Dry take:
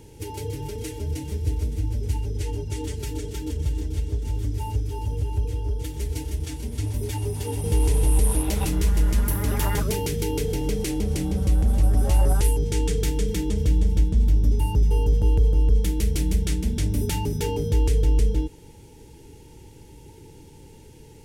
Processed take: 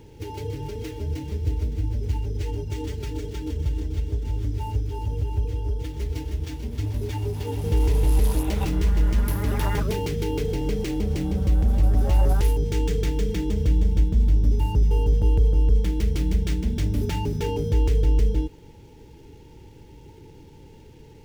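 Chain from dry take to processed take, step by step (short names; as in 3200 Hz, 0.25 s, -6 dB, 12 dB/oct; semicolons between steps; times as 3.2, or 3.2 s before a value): median filter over 5 samples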